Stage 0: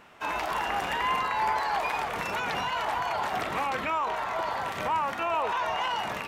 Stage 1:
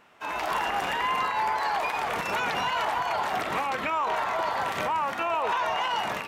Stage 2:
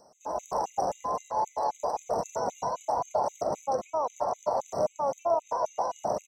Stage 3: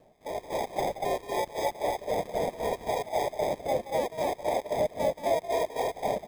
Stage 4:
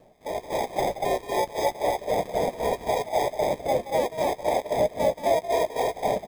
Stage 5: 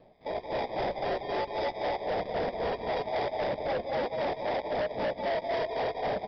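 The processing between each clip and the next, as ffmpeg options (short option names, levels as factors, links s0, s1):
-af "lowshelf=f=110:g=-7,dynaudnorm=f=190:g=5:m=3.35,alimiter=limit=0.188:level=0:latency=1:release=201,volume=0.631"
-filter_complex "[0:a]acrossover=split=680|2800[s0][s1][s2];[s2]acompressor=mode=upward:threshold=0.00251:ratio=2.5[s3];[s0][s1][s3]amix=inputs=3:normalize=0,firequalizer=gain_entry='entry(360,0);entry(570,10);entry(1700,-25);entry(3300,-25);entry(5800,8);entry(10000,-10)':delay=0.05:min_phase=1,afftfilt=real='re*gt(sin(2*PI*3.8*pts/sr)*(1-2*mod(floor(b*sr/1024/2000),2)),0)':imag='im*gt(sin(2*PI*3.8*pts/sr)*(1-2*mod(floor(b*sr/1024/2000),2)),0)':win_size=1024:overlap=0.75"
-filter_complex "[0:a]acrossover=split=610|770[s0][s1][s2];[s2]acrusher=samples=31:mix=1:aa=0.000001[s3];[s0][s1][s3]amix=inputs=3:normalize=0,aecho=1:1:177.8|239.1:0.251|0.794"
-filter_complex "[0:a]asplit=2[s0][s1];[s1]adelay=16,volume=0.211[s2];[s0][s2]amix=inputs=2:normalize=0,volume=1.58"
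-af "aecho=1:1:187:0.299,aresample=11025,asoftclip=type=hard:threshold=0.0596,aresample=44100,volume=0.75"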